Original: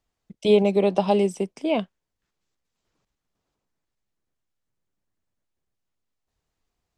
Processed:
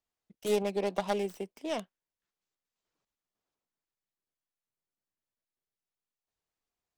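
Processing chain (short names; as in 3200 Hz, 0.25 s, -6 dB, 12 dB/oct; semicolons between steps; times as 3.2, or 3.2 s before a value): tracing distortion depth 0.25 ms; low shelf 200 Hz -11 dB; gain -9 dB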